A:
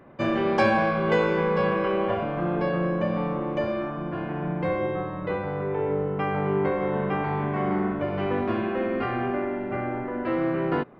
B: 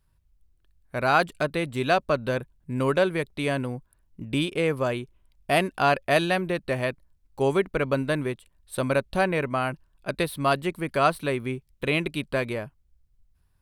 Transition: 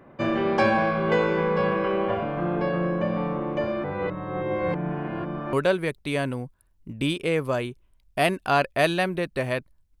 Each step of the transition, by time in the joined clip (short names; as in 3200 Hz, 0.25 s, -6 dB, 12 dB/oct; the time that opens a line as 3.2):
A
3.84–5.53 reverse
5.53 switch to B from 2.85 s